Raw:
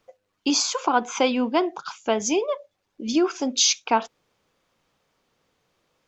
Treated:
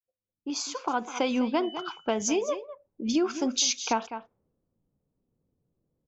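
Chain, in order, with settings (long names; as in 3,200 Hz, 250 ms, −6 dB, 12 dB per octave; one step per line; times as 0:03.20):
fade in at the beginning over 1.47 s
0:01.62–0:02.11: steady tone 3,000 Hz −39 dBFS
single-tap delay 202 ms −14.5 dB
downward compressor 2.5 to 1, threshold −21 dBFS, peak gain reduction 5.5 dB
parametric band 6,600 Hz +6 dB 1.2 octaves
low-pass that shuts in the quiet parts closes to 300 Hz, open at −22.5 dBFS
bass and treble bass +4 dB, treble −6 dB
level −2.5 dB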